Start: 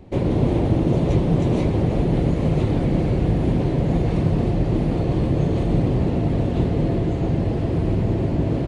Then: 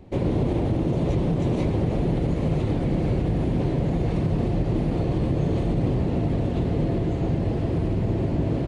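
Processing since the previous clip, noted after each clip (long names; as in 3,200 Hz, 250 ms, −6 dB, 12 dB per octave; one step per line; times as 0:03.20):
brickwall limiter −12 dBFS, peak gain reduction 5 dB
level −2.5 dB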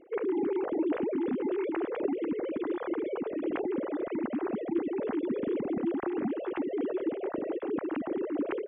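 three sine waves on the formant tracks
level −8.5 dB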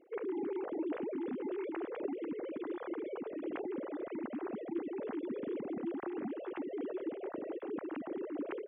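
low-shelf EQ 100 Hz −9.5 dB
level −7 dB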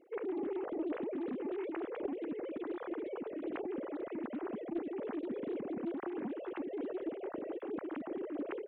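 highs frequency-modulated by the lows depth 0.23 ms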